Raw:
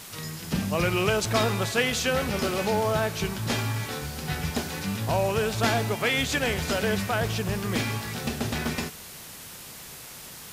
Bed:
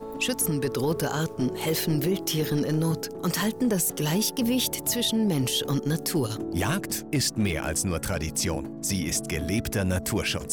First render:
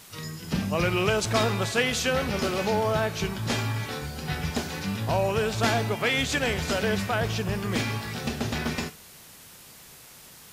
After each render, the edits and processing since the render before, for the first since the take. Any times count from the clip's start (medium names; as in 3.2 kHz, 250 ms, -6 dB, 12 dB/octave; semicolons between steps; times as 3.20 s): noise print and reduce 6 dB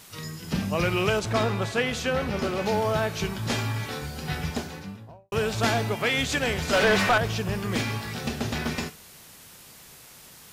1.19–2.66 s: treble shelf 3.3 kHz -8 dB; 4.35–5.32 s: studio fade out; 6.73–7.18 s: overdrive pedal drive 24 dB, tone 2.4 kHz, clips at -11.5 dBFS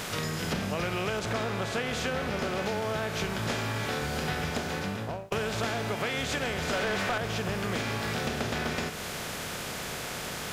spectral levelling over time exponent 0.6; compression 6:1, threshold -28 dBFS, peak gain reduction 12 dB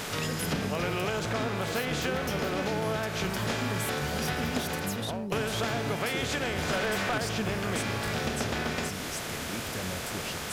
add bed -12.5 dB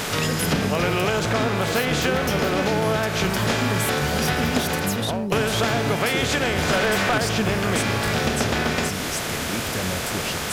trim +8.5 dB